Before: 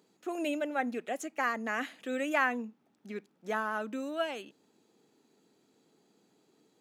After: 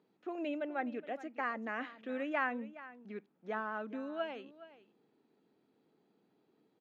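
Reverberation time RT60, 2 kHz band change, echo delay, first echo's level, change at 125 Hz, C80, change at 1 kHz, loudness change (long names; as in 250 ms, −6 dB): no reverb audible, −6.5 dB, 418 ms, −16.5 dB, can't be measured, no reverb audible, −5.0 dB, −5.5 dB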